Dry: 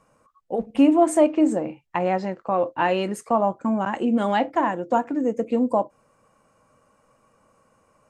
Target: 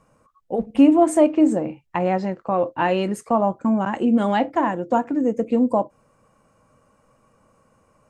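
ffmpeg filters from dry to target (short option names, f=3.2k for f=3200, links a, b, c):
-af "lowshelf=f=260:g=6.5"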